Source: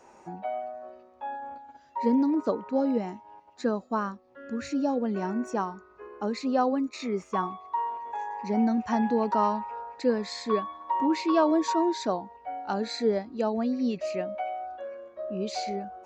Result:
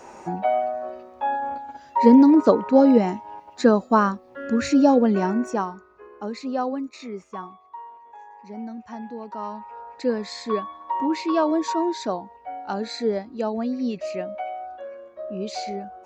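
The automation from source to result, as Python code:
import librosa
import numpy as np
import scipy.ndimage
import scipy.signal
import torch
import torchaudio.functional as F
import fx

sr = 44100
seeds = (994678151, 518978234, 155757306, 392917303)

y = fx.gain(x, sr, db=fx.line((4.97, 11.0), (6.04, -1.0), (6.74, -1.0), (7.82, -10.0), (9.3, -10.0), (9.96, 1.5)))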